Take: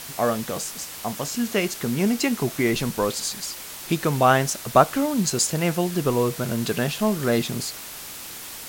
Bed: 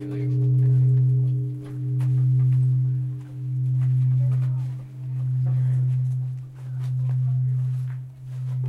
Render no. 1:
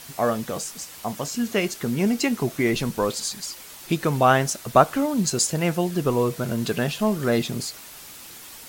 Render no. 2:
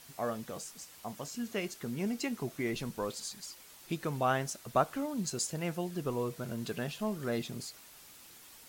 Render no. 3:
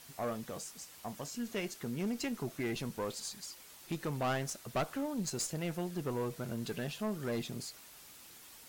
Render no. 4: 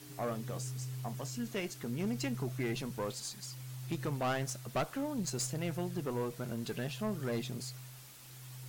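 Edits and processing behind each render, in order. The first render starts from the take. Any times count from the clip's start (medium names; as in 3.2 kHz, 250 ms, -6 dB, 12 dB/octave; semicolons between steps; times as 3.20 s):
noise reduction 6 dB, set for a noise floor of -38 dBFS
trim -12.5 dB
single-diode clipper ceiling -30.5 dBFS; hard clipper -28.5 dBFS, distortion -15 dB
add bed -23 dB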